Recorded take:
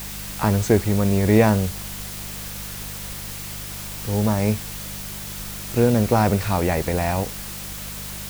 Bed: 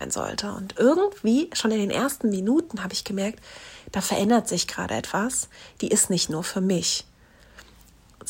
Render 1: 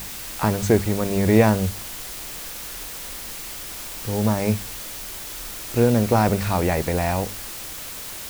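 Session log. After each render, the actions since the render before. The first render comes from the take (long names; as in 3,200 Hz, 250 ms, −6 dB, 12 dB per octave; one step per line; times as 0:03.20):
hum removal 50 Hz, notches 5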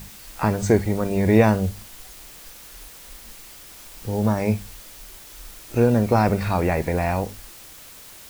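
noise reduction from a noise print 9 dB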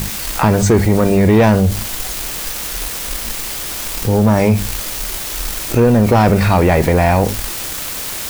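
leveller curve on the samples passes 2
envelope flattener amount 50%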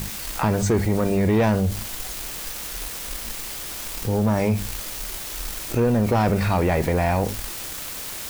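level −8.5 dB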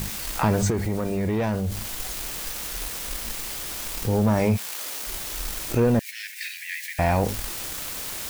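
0:00.70–0:01.98: downward compressor 2 to 1, threshold −26 dBFS
0:04.56–0:05.06: high-pass filter 850 Hz → 230 Hz
0:05.99–0:06.99: Butterworth high-pass 1,700 Hz 96 dB per octave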